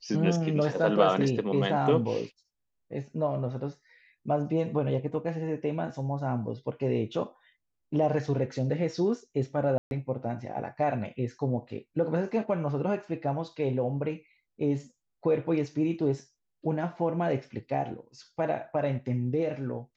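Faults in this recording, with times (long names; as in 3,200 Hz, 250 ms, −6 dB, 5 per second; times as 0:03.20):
0:09.78–0:09.91: drop-out 131 ms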